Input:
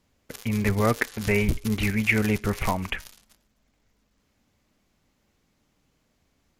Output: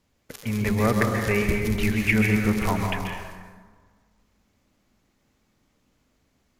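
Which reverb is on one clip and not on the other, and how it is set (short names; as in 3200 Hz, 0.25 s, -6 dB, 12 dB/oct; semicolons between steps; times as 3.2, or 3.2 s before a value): plate-style reverb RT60 1.6 s, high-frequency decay 0.45×, pre-delay 0.12 s, DRR 1.5 dB; gain -1 dB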